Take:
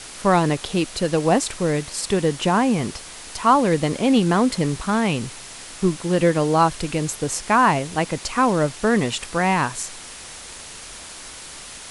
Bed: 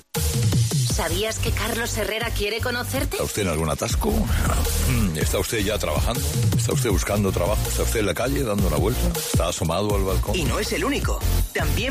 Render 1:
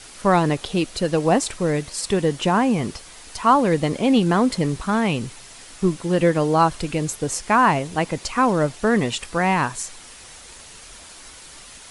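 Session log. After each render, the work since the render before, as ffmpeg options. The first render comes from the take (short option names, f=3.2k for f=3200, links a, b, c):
-af "afftdn=nr=6:nf=-38"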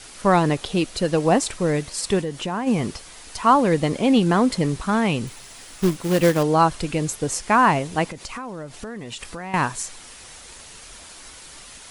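-filter_complex "[0:a]asplit=3[a][b][c];[a]afade=t=out:st=2.21:d=0.02[d];[b]acompressor=threshold=-29dB:ratio=2:attack=3.2:release=140:knee=1:detection=peak,afade=t=in:st=2.21:d=0.02,afade=t=out:st=2.66:d=0.02[e];[c]afade=t=in:st=2.66:d=0.02[f];[d][e][f]amix=inputs=3:normalize=0,asettb=1/sr,asplit=3[g][h][i];[g]atrim=end=5.274[j];[h]atrim=start=5.27:end=6.43,asetpts=PTS-STARTPTS,afade=t=in:d=0.004:c=qsin,afade=t=out:st=1.156:d=0.004:c=qsin,acrusher=bits=3:mode=log:mix=0:aa=0.000001[k];[i]atrim=start=6.426[l];[j][k]acrossfade=d=0.004:c1=hsin:c2=qsin[m];[m][l]acrossfade=d=0.004:c1=qsin:c2=hsin,asettb=1/sr,asplit=3[n][o][p];[n]atrim=end=8.094[q];[o]atrim=start=8.09:end=9.54,asetpts=PTS-STARTPTS,afade=t=in:d=0.004:c=qsin,afade=t=out:st=1.446:d=0.004:c=qsin,acompressor=threshold=-29dB:ratio=16:attack=3.2:release=140:knee=1:detection=peak[r];[p]atrim=start=9.536[s];[q][r]acrossfade=d=0.004:c1=hsin:c2=qsin[t];[t][s]acrossfade=d=0.004:c1=qsin:c2=hsin"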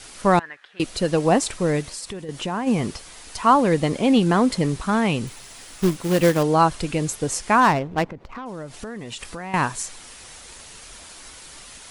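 -filter_complex "[0:a]asettb=1/sr,asplit=3[a][b][c];[a]atrim=end=0.394[d];[b]atrim=start=0.39:end=0.8,asetpts=PTS-STARTPTS,afade=t=in:d=0.004:c=qsin,afade=t=out:st=0.406:d=0.004:c=qsin,bandpass=f=1.7k:t=q:w=5.9[e];[c]atrim=start=0.796[f];[d][e]acrossfade=d=0.004:c1=hsin:c2=qsin[g];[g][f]acrossfade=d=0.004:c1=qsin:c2=hsin,asettb=1/sr,asplit=3[h][i][j];[h]atrim=end=1.814[k];[i]atrim=start=1.81:end=2.29,asetpts=PTS-STARTPTS,afade=t=in:d=0.004:c=qsin,afade=t=out:st=0.476:d=0.004:c=qsin,acompressor=threshold=-30dB:ratio=6:attack=3.2:release=140:knee=1:detection=peak[l];[j]atrim=start=2.286[m];[k][l]acrossfade=d=0.004:c1=hsin:c2=qsin[n];[n][m]acrossfade=d=0.004:c1=qsin:c2=hsin,asplit=3[o][p][q];[o]afade=t=out:st=7.6:d=0.02[r];[p]adynamicsmooth=sensitivity=2:basefreq=790,afade=t=in:st=7.6:d=0.02,afade=t=out:st=8.45:d=0.02[s];[q]afade=t=in:st=8.45:d=0.02[t];[r][s][t]amix=inputs=3:normalize=0"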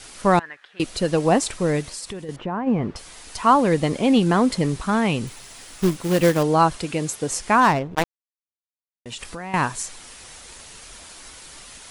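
-filter_complex "[0:a]asettb=1/sr,asplit=3[a][b][c];[a]atrim=end=2.364[d];[b]atrim=start=2.36:end=2.96,asetpts=PTS-STARTPTS,afade=t=in:d=0.004:c=qsin,afade=t=out:st=0.596:d=0.004:c=qsin,lowpass=1.6k[e];[c]atrim=start=2.956[f];[d][e]acrossfade=d=0.004:c1=hsin:c2=qsin[g];[g][f]acrossfade=d=0.004:c1=qsin:c2=hsin,asettb=1/sr,asplit=3[h][i][j];[h]atrim=end=6.774[k];[i]atrim=start=6.77:end=7.3,asetpts=PTS-STARTPTS,afade=t=in:d=0.004:c=qsin,afade=t=out:st=0.526:d=0.004:c=qsin,highpass=f=150:p=1[l];[j]atrim=start=7.296[m];[k][l]acrossfade=d=0.004:c1=hsin:c2=qsin[n];[n][m]acrossfade=d=0.004:c1=qsin:c2=hsin,asettb=1/sr,asplit=3[o][p][q];[o]atrim=end=7.954[r];[p]atrim=start=7.95:end=9.06,asetpts=PTS-STARTPTS,afade=t=in:d=0.004:c=qsin,afade=t=out:st=1.106:d=0.004:c=qsin,acrusher=bits=2:mix=0:aa=0.5[s];[q]atrim=start=9.056[t];[r][s]acrossfade=d=0.004:c1=hsin:c2=qsin[u];[u][t]acrossfade=d=0.004:c1=qsin:c2=hsin"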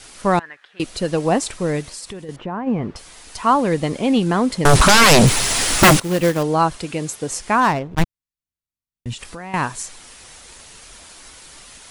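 -filter_complex "[0:a]asettb=1/sr,asplit=3[a][b][c];[a]atrim=end=4.654[d];[b]atrim=start=4.65:end=6,asetpts=PTS-STARTPTS,afade=t=in:d=0.004:c=qsin,afade=t=out:st=1.346:d=0.004:c=qsin,aeval=exprs='0.473*sin(PI/2*8.91*val(0)/0.473)':c=same[e];[c]atrim=start=5.996[f];[d][e]acrossfade=d=0.004:c1=hsin:c2=qsin[g];[g][f]acrossfade=d=0.004:c1=qsin:c2=hsin,asplit=3[h][i][j];[h]afade=t=out:st=7.94:d=0.02[k];[i]asubboost=boost=11.5:cutoff=170,afade=t=in:st=7.94:d=0.02,afade=t=out:st=9.13:d=0.02[l];[j]afade=t=in:st=9.13:d=0.02[m];[k][l][m]amix=inputs=3:normalize=0"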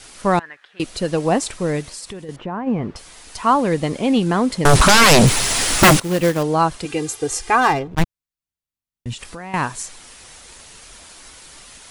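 -filter_complex "[0:a]asettb=1/sr,asplit=3[a][b][c];[a]atrim=end=6.854[d];[b]atrim=start=6.85:end=7.88,asetpts=PTS-STARTPTS,afade=t=in:d=0.004:c=qsin,afade=t=out:st=1.026:d=0.004:c=qsin,aecho=1:1:2.5:0.83,atrim=end_sample=45423[e];[c]atrim=start=7.876[f];[d][e]acrossfade=d=0.004:c1=hsin:c2=qsin[g];[g][f]acrossfade=d=0.004:c1=qsin:c2=hsin"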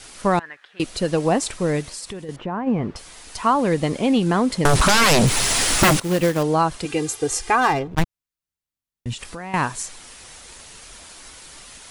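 -af "acompressor=threshold=-13dB:ratio=6"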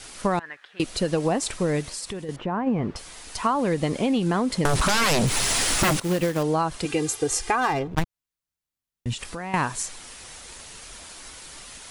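-af "acompressor=threshold=-19dB:ratio=6"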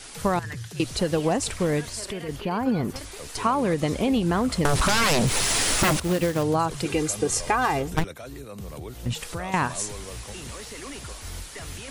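-filter_complex "[1:a]volume=-16.5dB[a];[0:a][a]amix=inputs=2:normalize=0"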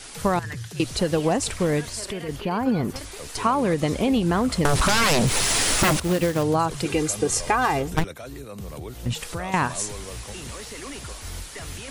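-af "volume=1.5dB"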